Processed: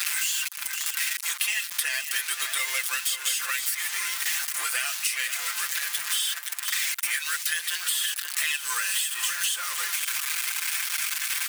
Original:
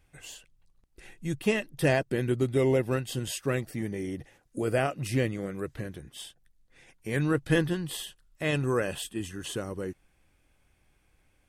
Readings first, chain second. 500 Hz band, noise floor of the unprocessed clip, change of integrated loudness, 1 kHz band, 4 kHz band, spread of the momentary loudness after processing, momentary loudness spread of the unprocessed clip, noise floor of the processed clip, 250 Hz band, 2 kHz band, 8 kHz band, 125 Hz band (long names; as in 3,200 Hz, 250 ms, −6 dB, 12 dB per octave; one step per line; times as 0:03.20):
−24.5 dB, −68 dBFS, +4.0 dB, +2.0 dB, +13.5 dB, 2 LU, 17 LU, −37 dBFS, below −35 dB, +9.0 dB, +18.0 dB, below −40 dB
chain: converter with a step at zero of −33.5 dBFS
high-pass filter 1,300 Hz 24 dB per octave
high-shelf EQ 3,700 Hz +11 dB
comb filter 5.8 ms, depth 88%
downward compressor, threshold −28 dBFS, peak gain reduction 10 dB
on a send: single-tap delay 523 ms −13 dB
on the sum: multiband upward and downward compressor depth 100%
level +5.5 dB